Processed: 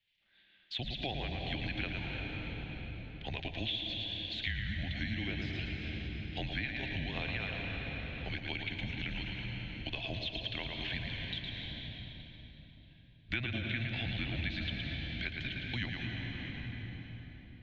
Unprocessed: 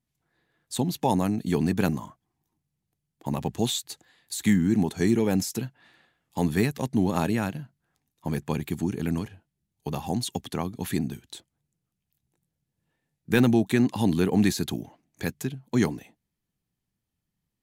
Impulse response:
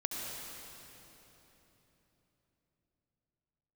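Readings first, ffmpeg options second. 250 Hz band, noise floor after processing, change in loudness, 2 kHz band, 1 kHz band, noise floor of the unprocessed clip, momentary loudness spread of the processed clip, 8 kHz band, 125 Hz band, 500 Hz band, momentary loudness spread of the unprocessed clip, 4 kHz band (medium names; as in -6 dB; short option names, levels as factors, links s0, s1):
-17.5 dB, -59 dBFS, -11.5 dB, -0.5 dB, -14.5 dB, -83 dBFS, 8 LU, under -30 dB, -9.0 dB, -16.5 dB, 16 LU, +0.5 dB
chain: -filter_complex "[0:a]acrossover=split=2600[s0][s1];[s1]acompressor=threshold=0.00794:ratio=4:attack=1:release=60[s2];[s0][s2]amix=inputs=2:normalize=0,aexciter=amount=10.8:drive=7.3:freq=2100,highpass=f=170:t=q:w=0.5412,highpass=f=170:t=q:w=1.307,lowpass=f=3500:t=q:w=0.5176,lowpass=f=3500:t=q:w=0.7071,lowpass=f=3500:t=q:w=1.932,afreqshift=-130,asplit=2[s3][s4];[1:a]atrim=start_sample=2205,adelay=112[s5];[s4][s5]afir=irnorm=-1:irlink=0,volume=0.562[s6];[s3][s6]amix=inputs=2:normalize=0,acompressor=threshold=0.0282:ratio=3,volume=0.501"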